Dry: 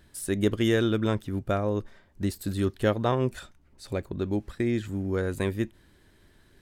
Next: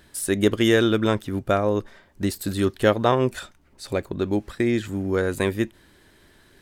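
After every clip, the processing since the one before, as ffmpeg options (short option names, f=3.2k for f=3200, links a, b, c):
-af "lowshelf=f=200:g=-8,volume=7.5dB"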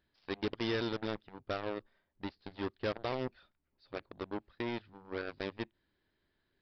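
-af "aeval=exprs='0.596*(cos(1*acos(clip(val(0)/0.596,-1,1)))-cos(1*PI/2))+0.00422*(cos(4*acos(clip(val(0)/0.596,-1,1)))-cos(4*PI/2))+0.0944*(cos(7*acos(clip(val(0)/0.596,-1,1)))-cos(7*PI/2))':c=same,aresample=11025,asoftclip=type=tanh:threshold=-22.5dB,aresample=44100,volume=-5dB"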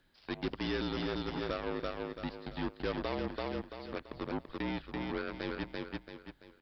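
-filter_complex "[0:a]asplit=2[a][b];[b]aecho=0:1:336|672|1008|1344:0.316|0.12|0.0457|0.0174[c];[a][c]amix=inputs=2:normalize=0,alimiter=level_in=11.5dB:limit=-24dB:level=0:latency=1:release=11,volume=-11.5dB,afreqshift=-48,volume=8.5dB"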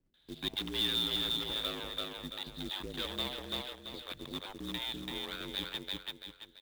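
-filter_complex "[0:a]lowpass=f=3.6k:t=q:w=13,acrossover=split=490[a][b];[b]adelay=140[c];[a][c]amix=inputs=2:normalize=0,acrusher=bits=3:mode=log:mix=0:aa=0.000001,volume=-5dB"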